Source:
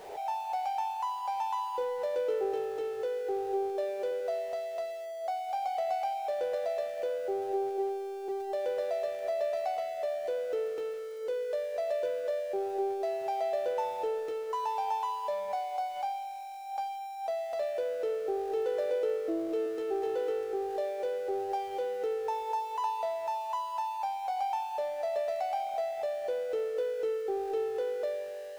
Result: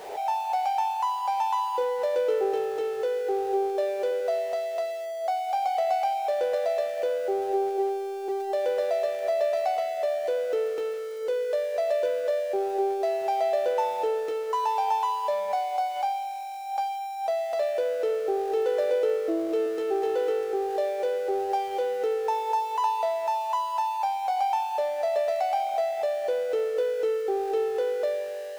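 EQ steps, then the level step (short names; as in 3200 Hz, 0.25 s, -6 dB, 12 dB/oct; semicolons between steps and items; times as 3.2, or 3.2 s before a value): low shelf 180 Hz -9.5 dB; +7.0 dB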